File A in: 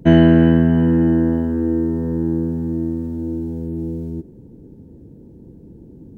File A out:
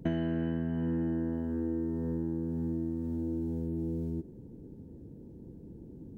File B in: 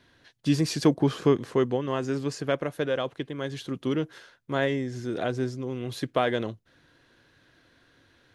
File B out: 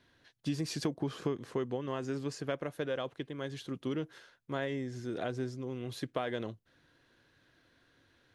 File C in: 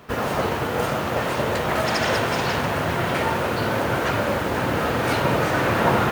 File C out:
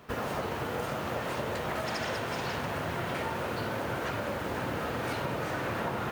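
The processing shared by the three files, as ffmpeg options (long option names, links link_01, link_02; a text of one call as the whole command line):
ffmpeg -i in.wav -af "acompressor=threshold=-23dB:ratio=6,volume=-6.5dB" out.wav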